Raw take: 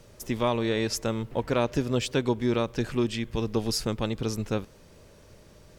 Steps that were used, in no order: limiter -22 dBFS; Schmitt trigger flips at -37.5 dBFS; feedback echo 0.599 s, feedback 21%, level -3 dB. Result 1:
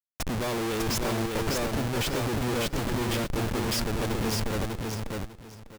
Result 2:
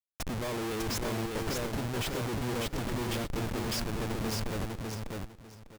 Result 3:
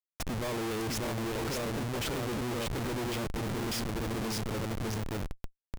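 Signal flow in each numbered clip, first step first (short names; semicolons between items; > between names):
Schmitt trigger > limiter > feedback echo; limiter > Schmitt trigger > feedback echo; limiter > feedback echo > Schmitt trigger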